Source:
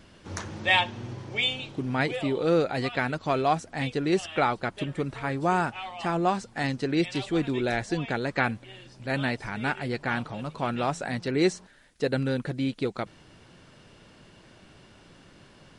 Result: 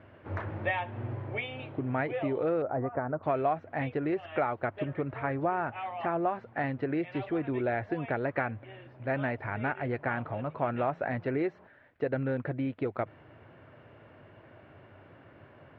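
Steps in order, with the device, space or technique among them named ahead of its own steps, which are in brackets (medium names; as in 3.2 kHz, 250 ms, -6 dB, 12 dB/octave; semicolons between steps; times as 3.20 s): bass amplifier (compression 5:1, threshold -27 dBFS, peak gain reduction 9.5 dB; cabinet simulation 90–2200 Hz, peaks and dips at 99 Hz +8 dB, 190 Hz -10 dB, 630 Hz +6 dB); 2.62–3.23 s: low-pass 1.3 kHz 24 dB/octave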